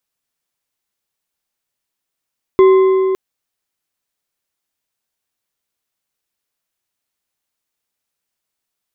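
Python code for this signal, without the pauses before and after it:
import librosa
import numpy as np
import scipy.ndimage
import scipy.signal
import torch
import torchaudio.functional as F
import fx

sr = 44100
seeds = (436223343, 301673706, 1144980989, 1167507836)

y = fx.strike_metal(sr, length_s=0.56, level_db=-4, body='bar', hz=380.0, decay_s=3.36, tilt_db=11.5, modes=4)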